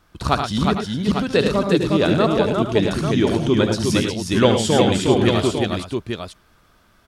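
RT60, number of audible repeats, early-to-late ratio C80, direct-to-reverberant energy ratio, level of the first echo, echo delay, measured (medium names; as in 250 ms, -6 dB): no reverb, 5, no reverb, no reverb, -8.0 dB, 74 ms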